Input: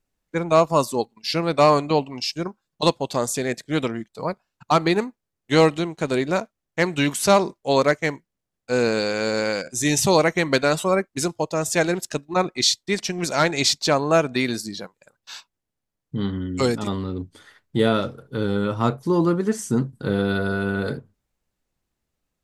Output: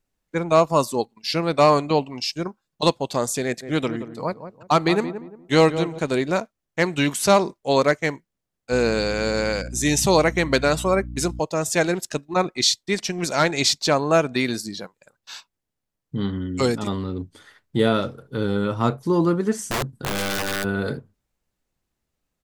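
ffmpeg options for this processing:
-filter_complex "[0:a]asplit=3[a][b][c];[a]afade=t=out:st=3.61:d=0.02[d];[b]asplit=2[e][f];[f]adelay=175,lowpass=f=1k:p=1,volume=-10dB,asplit=2[g][h];[h]adelay=175,lowpass=f=1k:p=1,volume=0.32,asplit=2[i][j];[j]adelay=175,lowpass=f=1k:p=1,volume=0.32,asplit=2[k][l];[l]adelay=175,lowpass=f=1k:p=1,volume=0.32[m];[e][g][i][k][m]amix=inputs=5:normalize=0,afade=t=in:st=3.61:d=0.02,afade=t=out:st=5.98:d=0.02[n];[c]afade=t=in:st=5.98:d=0.02[o];[d][n][o]amix=inputs=3:normalize=0,asettb=1/sr,asplit=3[p][q][r];[p]atrim=end=8.724[s];[q]atrim=start=8.72:end=11.4,asetpts=PTS-STARTPTS,afade=t=in:d=0.004:c=qsin,afade=t=out:st=2.676:d=0.004:c=qsin,aeval=exprs='val(0)+0.0251*(sin(2*PI*60*n/s)+sin(2*PI*2*60*n/s)/2+sin(2*PI*3*60*n/s)/3+sin(2*PI*4*60*n/s)/4+sin(2*PI*5*60*n/s)/5)':c=same[t];[r]atrim=start=11.396[u];[s][t]acrossfade=d=0.004:c1=hsin:c2=qsin[v];[v][u]acrossfade=d=0.004:c1=qsin:c2=hsin,asplit=3[w][x][y];[w]afade=t=out:st=19.58:d=0.02[z];[x]aeval=exprs='(mod(8.41*val(0)+1,2)-1)/8.41':c=same,afade=t=in:st=19.58:d=0.02,afade=t=out:st=20.63:d=0.02[aa];[y]afade=t=in:st=20.63:d=0.02[ab];[z][aa][ab]amix=inputs=3:normalize=0"

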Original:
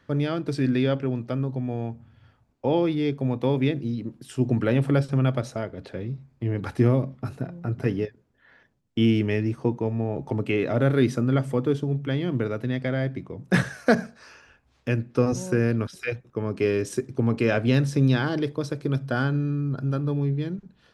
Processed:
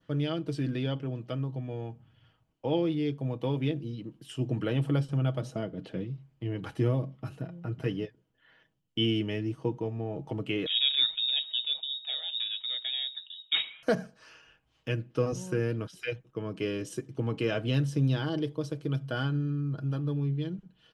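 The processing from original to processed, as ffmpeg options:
-filter_complex "[0:a]asettb=1/sr,asplit=3[a][b][c];[a]atrim=end=5.414[d];[b]atrim=start=5.41:end=6.04,asetpts=PTS-STARTPTS,afade=t=in:d=0.004:c=qsin,afade=t=out:st=0.626:d=0.004:c=qsin,equalizer=f=210:t=o:w=1.6:g=9[e];[c]atrim=start=6.036[f];[d][e]acrossfade=d=0.004:c1=hsin:c2=qsin[g];[g][f]acrossfade=d=0.004:c1=qsin:c2=hsin,asettb=1/sr,asplit=3[h][i][j];[h]atrim=end=10.664[k];[i]atrim=start=10.66:end=13.83,asetpts=PTS-STARTPTS,afade=t=in:d=0.004:c=qsin,afade=t=out:st=3.166:d=0.004:c=qsin,lowpass=f=3.3k:t=q:w=0.5098,lowpass=f=3.3k:t=q:w=0.6013,lowpass=f=3.3k:t=q:w=0.9,lowpass=f=3.3k:t=q:w=2.563,afreqshift=-3900[l];[j]atrim=start=13.826[m];[k][l]acrossfade=d=0.004:c1=hsin:c2=qsin[n];[n][m]acrossfade=d=0.004:c1=qsin:c2=hsin,equalizer=f=3k:w=6:g=13.5,aecho=1:1:6.3:0.48,adynamicequalizer=threshold=0.00708:dfrequency=2300:dqfactor=0.87:tfrequency=2300:tqfactor=0.87:attack=5:release=100:ratio=0.375:range=3.5:mode=cutabove:tftype=bell,volume=-7.5dB"

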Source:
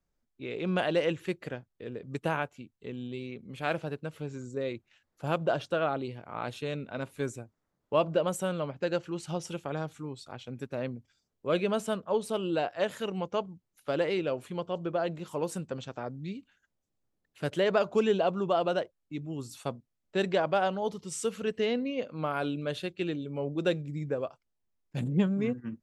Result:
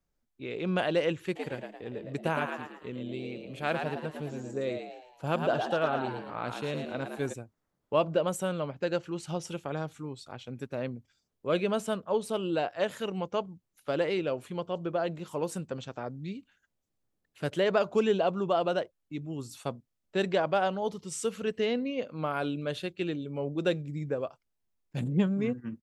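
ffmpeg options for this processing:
-filter_complex "[0:a]asplit=3[a][b][c];[a]afade=t=out:st=1.35:d=0.02[d];[b]asplit=6[e][f][g][h][i][j];[f]adelay=111,afreqshift=86,volume=-5.5dB[k];[g]adelay=222,afreqshift=172,volume=-12.6dB[l];[h]adelay=333,afreqshift=258,volume=-19.8dB[m];[i]adelay=444,afreqshift=344,volume=-26.9dB[n];[j]adelay=555,afreqshift=430,volume=-34dB[o];[e][k][l][m][n][o]amix=inputs=6:normalize=0,afade=t=in:st=1.35:d=0.02,afade=t=out:st=7.32:d=0.02[p];[c]afade=t=in:st=7.32:d=0.02[q];[d][p][q]amix=inputs=3:normalize=0"

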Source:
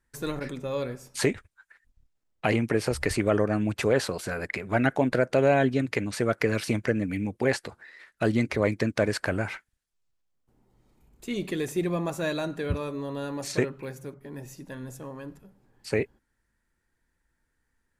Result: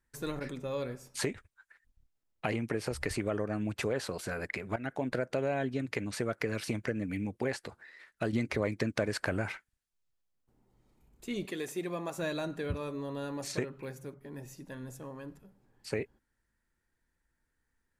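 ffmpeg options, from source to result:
-filter_complex "[0:a]asettb=1/sr,asplit=3[a][b][c];[a]atrim=end=11.454[d];[b]atrim=start=11.45:end=12.18,asetpts=PTS-STARTPTS,afade=t=in:d=0.004:c=qsin,afade=t=out:st=0.726:d=0.004:c=qsin,highpass=f=380:p=1[e];[c]atrim=start=12.176[f];[d][e]acrossfade=d=0.004:c1=hsin:c2=qsin[g];[g][f]acrossfade=d=0.004:c1=qsin:c2=hsin,asplit=4[h][i][j][k];[h]atrim=end=4.76,asetpts=PTS-STARTPTS,afade=t=out:st=4.756:d=0.004:c=hsin:silence=0.177828[l];[i]atrim=start=4.76:end=8.332,asetpts=PTS-STARTPTS,afade=t=in:d=0.4:silence=0.177828[m];[j]atrim=start=8.328:end=9.522,asetpts=PTS-STARTPTS,volume=6dB[n];[k]atrim=start=9.518[o];[l][m]concat=n=2:v=0:a=1[p];[p][n]acrossfade=d=0.004:c1=hsin:c2=hsin[q];[q][o]acrossfade=d=0.004:c1=hsin:c2=hsin,acompressor=threshold=-25dB:ratio=3,volume=-4.5dB"

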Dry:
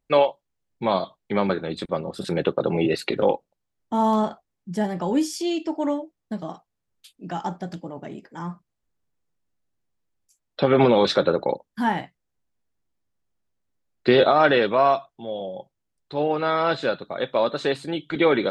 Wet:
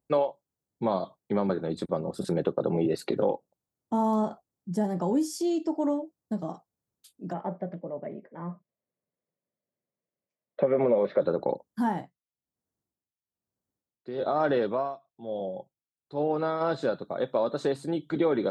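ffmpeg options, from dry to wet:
-filter_complex "[0:a]asplit=3[a][b][c];[a]afade=t=out:st=7.32:d=0.02[d];[b]highpass=180,equalizer=f=300:t=q:w=4:g=-7,equalizer=f=580:t=q:w=4:g=8,equalizer=f=830:t=q:w=4:g=-7,equalizer=f=1.4k:t=q:w=4:g=-6,equalizer=f=2.1k:t=q:w=4:g=9,lowpass=f=2.4k:w=0.5412,lowpass=f=2.4k:w=1.3066,afade=t=in:st=7.32:d=0.02,afade=t=out:st=11.2:d=0.02[e];[c]afade=t=in:st=11.2:d=0.02[f];[d][e][f]amix=inputs=3:normalize=0,asplit=3[g][h][i];[g]afade=t=out:st=11.82:d=0.02[j];[h]tremolo=f=1.1:d=0.9,afade=t=in:st=11.82:d=0.02,afade=t=out:st=16.6:d=0.02[k];[i]afade=t=in:st=16.6:d=0.02[l];[j][k][l]amix=inputs=3:normalize=0,highpass=86,equalizer=f=2.6k:w=0.81:g=-14.5,acompressor=threshold=-23dB:ratio=2.5"

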